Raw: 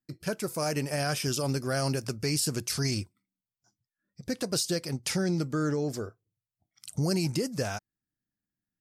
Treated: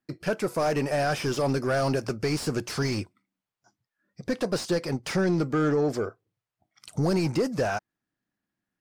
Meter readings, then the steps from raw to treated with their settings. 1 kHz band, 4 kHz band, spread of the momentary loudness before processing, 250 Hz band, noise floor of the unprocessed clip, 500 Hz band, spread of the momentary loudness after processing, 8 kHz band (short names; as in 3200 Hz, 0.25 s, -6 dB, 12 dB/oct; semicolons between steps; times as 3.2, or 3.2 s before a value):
+6.5 dB, -2.5 dB, 10 LU, +3.5 dB, under -85 dBFS, +6.0 dB, 8 LU, -6.5 dB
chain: overdrive pedal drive 18 dB, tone 1000 Hz, clips at -17 dBFS; gain +3 dB